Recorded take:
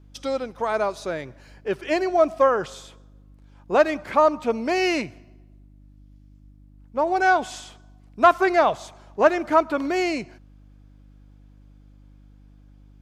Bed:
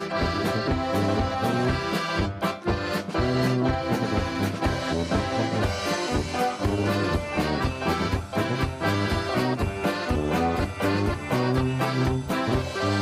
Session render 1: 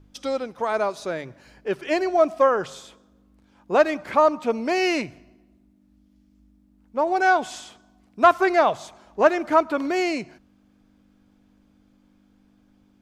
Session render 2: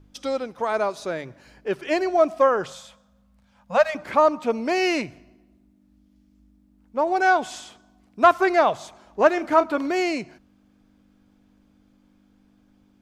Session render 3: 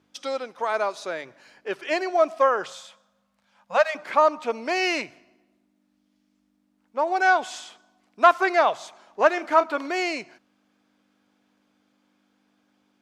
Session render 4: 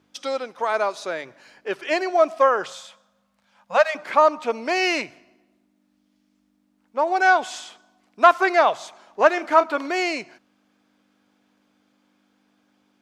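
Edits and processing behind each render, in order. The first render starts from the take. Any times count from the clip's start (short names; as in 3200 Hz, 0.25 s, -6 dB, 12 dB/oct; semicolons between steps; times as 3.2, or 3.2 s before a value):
de-hum 50 Hz, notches 3
2.72–3.95 elliptic band-stop 230–520 Hz; 9.34–9.78 doubler 31 ms -11 dB
weighting filter A
gain +2.5 dB; limiter -2 dBFS, peak gain reduction 0.5 dB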